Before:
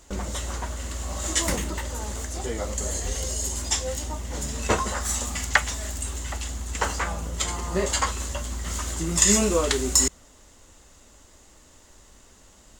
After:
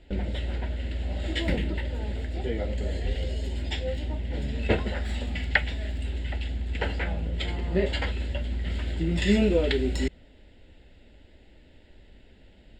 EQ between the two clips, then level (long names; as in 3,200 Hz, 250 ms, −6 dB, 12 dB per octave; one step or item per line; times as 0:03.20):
high-frequency loss of the air 180 metres
phaser with its sweep stopped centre 2,700 Hz, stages 4
+2.5 dB